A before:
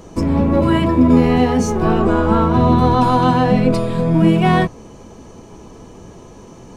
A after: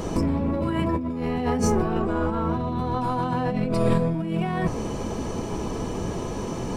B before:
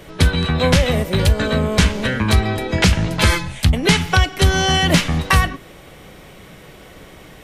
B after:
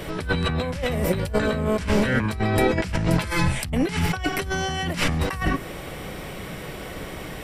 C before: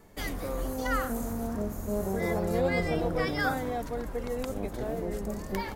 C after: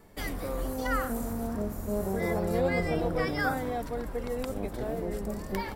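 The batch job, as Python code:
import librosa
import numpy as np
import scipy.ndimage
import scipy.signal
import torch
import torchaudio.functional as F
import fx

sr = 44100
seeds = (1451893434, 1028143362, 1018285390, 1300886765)

y = fx.over_compress(x, sr, threshold_db=-24.0, ratio=-1.0)
y = fx.notch(y, sr, hz=6500.0, q=9.3)
y = fx.dynamic_eq(y, sr, hz=3600.0, q=2.0, threshold_db=-45.0, ratio=4.0, max_db=-6)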